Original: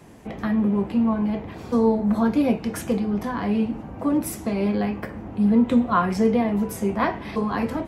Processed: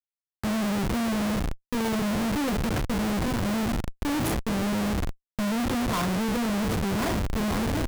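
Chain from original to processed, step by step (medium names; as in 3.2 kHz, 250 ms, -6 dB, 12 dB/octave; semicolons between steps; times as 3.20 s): transient shaper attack -3 dB, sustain +7 dB; Schmitt trigger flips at -24 dBFS; trim -3.5 dB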